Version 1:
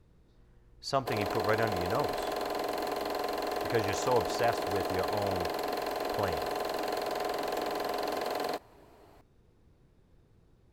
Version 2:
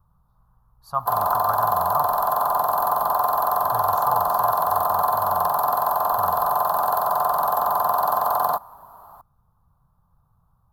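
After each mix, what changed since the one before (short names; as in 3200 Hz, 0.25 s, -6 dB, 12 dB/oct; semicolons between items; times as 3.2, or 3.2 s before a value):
background +11.0 dB; master: add EQ curve 170 Hz 0 dB, 350 Hz -25 dB, 830 Hz +6 dB, 1200 Hz +12 dB, 2200 Hz -29 dB, 3500 Hz -14 dB, 7800 Hz -12 dB, 12000 Hz +10 dB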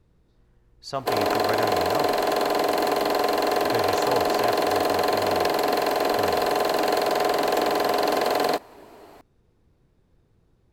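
master: remove EQ curve 170 Hz 0 dB, 350 Hz -25 dB, 830 Hz +6 dB, 1200 Hz +12 dB, 2200 Hz -29 dB, 3500 Hz -14 dB, 7800 Hz -12 dB, 12000 Hz +10 dB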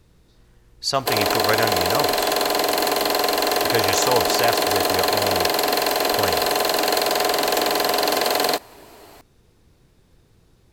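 speech +6.0 dB; master: add high shelf 2300 Hz +11.5 dB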